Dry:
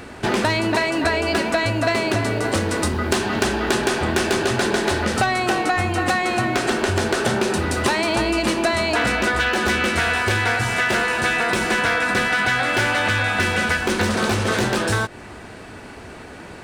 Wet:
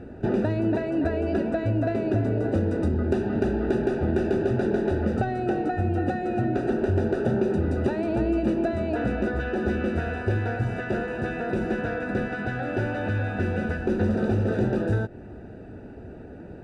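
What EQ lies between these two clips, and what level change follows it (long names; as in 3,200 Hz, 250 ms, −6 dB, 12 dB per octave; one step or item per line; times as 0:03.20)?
moving average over 41 samples
0.0 dB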